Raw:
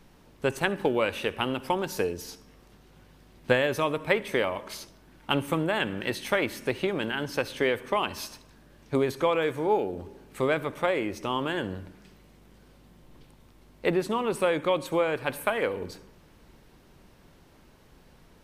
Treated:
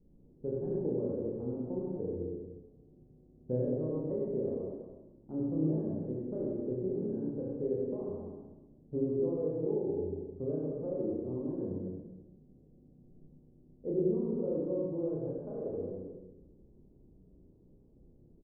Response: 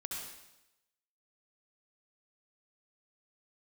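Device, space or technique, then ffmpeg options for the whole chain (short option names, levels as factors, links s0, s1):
next room: -filter_complex "[0:a]lowpass=f=450:w=0.5412,lowpass=f=450:w=1.3066,aecho=1:1:32.07|265.3:0.891|0.398[s0];[1:a]atrim=start_sample=2205[s1];[s0][s1]afir=irnorm=-1:irlink=0,volume=0.562"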